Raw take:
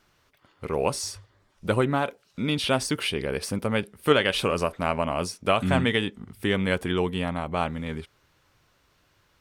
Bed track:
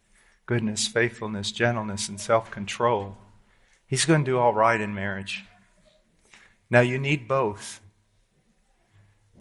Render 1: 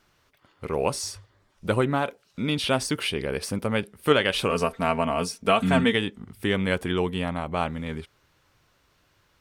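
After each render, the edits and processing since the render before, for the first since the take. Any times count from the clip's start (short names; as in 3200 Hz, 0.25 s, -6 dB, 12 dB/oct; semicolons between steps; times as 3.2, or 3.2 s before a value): 4.5–5.94 comb 4.4 ms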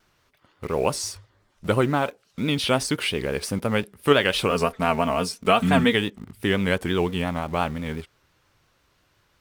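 vibrato 5.8 Hz 76 cents; in parallel at -11.5 dB: requantised 6-bit, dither none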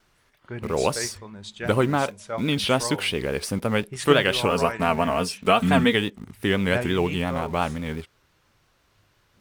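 add bed track -10 dB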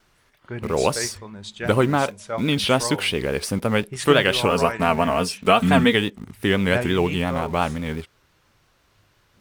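gain +2.5 dB; limiter -3 dBFS, peak gain reduction 2 dB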